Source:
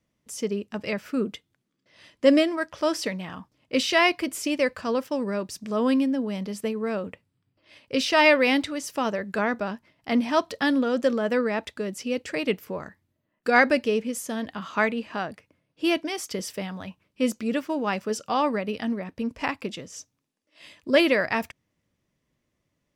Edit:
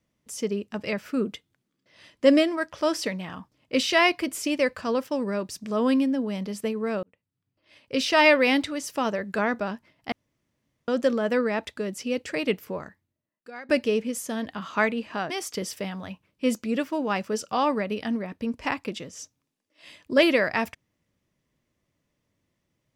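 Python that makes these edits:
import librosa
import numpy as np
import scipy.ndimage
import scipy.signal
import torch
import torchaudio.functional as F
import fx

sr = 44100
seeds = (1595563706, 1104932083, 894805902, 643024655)

y = fx.edit(x, sr, fx.fade_in_span(start_s=7.03, length_s=1.06),
    fx.room_tone_fill(start_s=10.12, length_s=0.76),
    fx.fade_out_to(start_s=12.76, length_s=0.93, curve='qua', floor_db=-24.0),
    fx.cut(start_s=15.3, length_s=0.77), tone=tone)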